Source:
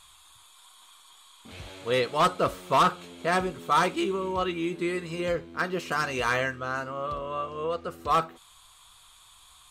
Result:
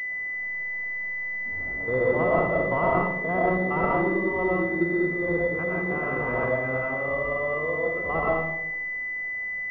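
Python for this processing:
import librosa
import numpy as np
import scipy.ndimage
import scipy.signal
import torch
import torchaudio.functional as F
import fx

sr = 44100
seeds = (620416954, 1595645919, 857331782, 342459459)

y = fx.spec_steps(x, sr, hold_ms=50)
y = fx.rev_freeverb(y, sr, rt60_s=0.95, hf_ratio=0.3, predelay_ms=70, drr_db=-3.5)
y = fx.pwm(y, sr, carrier_hz=2000.0)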